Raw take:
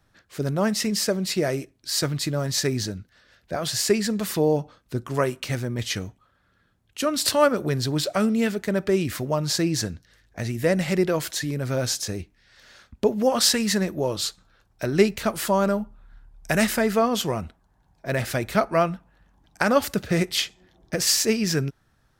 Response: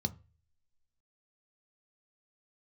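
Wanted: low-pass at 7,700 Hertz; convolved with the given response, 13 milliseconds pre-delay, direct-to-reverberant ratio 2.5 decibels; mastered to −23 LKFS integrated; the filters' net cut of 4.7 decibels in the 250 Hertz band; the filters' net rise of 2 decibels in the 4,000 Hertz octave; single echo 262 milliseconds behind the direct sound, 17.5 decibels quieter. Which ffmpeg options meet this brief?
-filter_complex "[0:a]lowpass=7700,equalizer=frequency=250:width_type=o:gain=-6.5,equalizer=frequency=4000:width_type=o:gain=3,aecho=1:1:262:0.133,asplit=2[link_01][link_02];[1:a]atrim=start_sample=2205,adelay=13[link_03];[link_02][link_03]afir=irnorm=-1:irlink=0,volume=-4dB[link_04];[link_01][link_04]amix=inputs=2:normalize=0,volume=-3dB"

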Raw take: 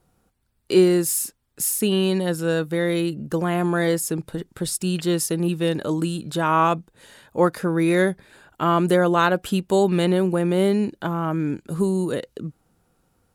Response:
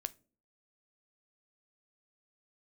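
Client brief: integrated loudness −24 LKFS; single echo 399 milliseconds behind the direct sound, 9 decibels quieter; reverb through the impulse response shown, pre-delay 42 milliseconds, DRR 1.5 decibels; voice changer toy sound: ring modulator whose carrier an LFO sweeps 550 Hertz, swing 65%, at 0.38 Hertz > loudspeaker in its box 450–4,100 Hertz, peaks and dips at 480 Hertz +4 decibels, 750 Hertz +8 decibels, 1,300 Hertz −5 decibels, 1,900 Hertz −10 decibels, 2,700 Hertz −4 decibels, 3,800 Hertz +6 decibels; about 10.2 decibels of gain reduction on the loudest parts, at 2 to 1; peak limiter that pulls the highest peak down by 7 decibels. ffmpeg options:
-filter_complex "[0:a]acompressor=threshold=-30dB:ratio=2,alimiter=limit=-21dB:level=0:latency=1,aecho=1:1:399:0.355,asplit=2[link_01][link_02];[1:a]atrim=start_sample=2205,adelay=42[link_03];[link_02][link_03]afir=irnorm=-1:irlink=0,volume=0dB[link_04];[link_01][link_04]amix=inputs=2:normalize=0,aeval=exprs='val(0)*sin(2*PI*550*n/s+550*0.65/0.38*sin(2*PI*0.38*n/s))':channel_layout=same,highpass=450,equalizer=frequency=480:width_type=q:width=4:gain=4,equalizer=frequency=750:width_type=q:width=4:gain=8,equalizer=frequency=1300:width_type=q:width=4:gain=-5,equalizer=frequency=1900:width_type=q:width=4:gain=-10,equalizer=frequency=2700:width_type=q:width=4:gain=-4,equalizer=frequency=3800:width_type=q:width=4:gain=6,lowpass=frequency=4100:width=0.5412,lowpass=frequency=4100:width=1.3066,volume=6.5dB"

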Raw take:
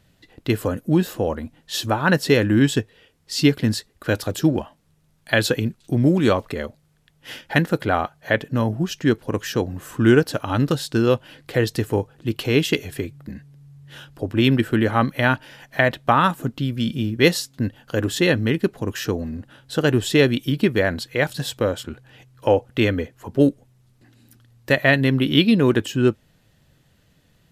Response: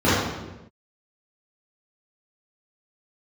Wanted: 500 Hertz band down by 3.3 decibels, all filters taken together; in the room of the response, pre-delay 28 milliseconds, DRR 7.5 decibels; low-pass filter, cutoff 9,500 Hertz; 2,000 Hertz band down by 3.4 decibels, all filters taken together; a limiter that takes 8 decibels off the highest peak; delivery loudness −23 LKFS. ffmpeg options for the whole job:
-filter_complex "[0:a]lowpass=9500,equalizer=frequency=500:width_type=o:gain=-4,equalizer=frequency=2000:width_type=o:gain=-4,alimiter=limit=-11dB:level=0:latency=1,asplit=2[link_01][link_02];[1:a]atrim=start_sample=2205,adelay=28[link_03];[link_02][link_03]afir=irnorm=-1:irlink=0,volume=-30dB[link_04];[link_01][link_04]amix=inputs=2:normalize=0,volume=-1dB"

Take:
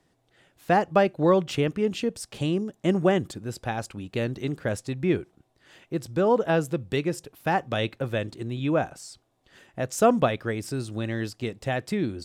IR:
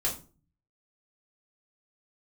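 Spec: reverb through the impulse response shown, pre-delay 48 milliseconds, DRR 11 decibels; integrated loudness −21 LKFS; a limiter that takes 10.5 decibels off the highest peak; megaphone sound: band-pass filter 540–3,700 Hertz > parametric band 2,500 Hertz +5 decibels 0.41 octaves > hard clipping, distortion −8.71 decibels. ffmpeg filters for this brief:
-filter_complex "[0:a]alimiter=limit=-18dB:level=0:latency=1,asplit=2[link_01][link_02];[1:a]atrim=start_sample=2205,adelay=48[link_03];[link_02][link_03]afir=irnorm=-1:irlink=0,volume=-17dB[link_04];[link_01][link_04]amix=inputs=2:normalize=0,highpass=540,lowpass=3700,equalizer=frequency=2500:width_type=o:width=0.41:gain=5,asoftclip=type=hard:threshold=-29.5dB,volume=15.5dB"

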